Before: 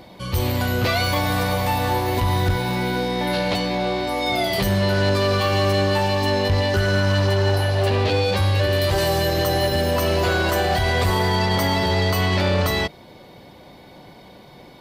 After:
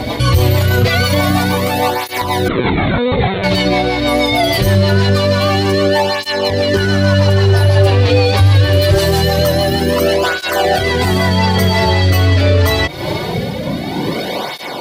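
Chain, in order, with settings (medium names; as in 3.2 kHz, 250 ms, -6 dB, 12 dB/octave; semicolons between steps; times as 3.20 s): compression, threshold -31 dBFS, peak gain reduction 14 dB; rotary cabinet horn 6.3 Hz, later 0.75 Hz, at 11.03 s; 2.48–3.44 s: LPC vocoder at 8 kHz pitch kept; loudness maximiser +31 dB; cancelling through-zero flanger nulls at 0.24 Hz, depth 5.8 ms; trim -1 dB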